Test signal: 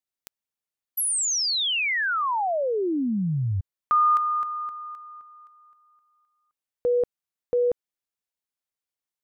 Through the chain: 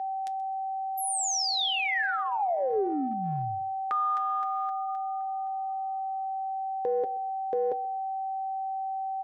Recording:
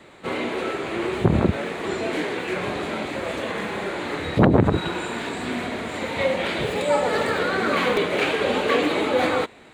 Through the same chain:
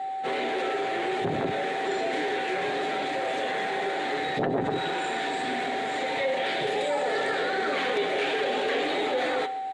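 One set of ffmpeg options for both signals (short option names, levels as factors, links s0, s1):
-af "flanger=delay=4.6:depth=2.9:regen=-85:speed=0.24:shape=sinusoidal,aecho=1:1:7.4:0.41,aeval=exprs='val(0)+0.0158*sin(2*PI*770*n/s)':c=same,highpass=220,equalizer=f=230:t=q:w=4:g=-4,equalizer=f=750:t=q:w=4:g=6,equalizer=f=1100:t=q:w=4:g=-6,equalizer=f=1800:t=q:w=4:g=6,equalizer=f=3500:t=q:w=4:g=5,equalizer=f=5500:t=q:w=4:g=3,lowpass=f=9700:w=0.5412,lowpass=f=9700:w=1.3066,aecho=1:1:129|258:0.075|0.018,acompressor=threshold=0.0355:ratio=3:attack=2.4:release=20:knee=1:detection=peak,equalizer=f=430:t=o:w=0.54:g=3.5,volume=1.19"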